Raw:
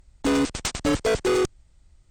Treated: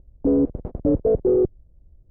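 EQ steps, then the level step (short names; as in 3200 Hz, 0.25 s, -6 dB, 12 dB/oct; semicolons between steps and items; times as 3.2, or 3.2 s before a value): Chebyshev low-pass 540 Hz, order 3; +4.5 dB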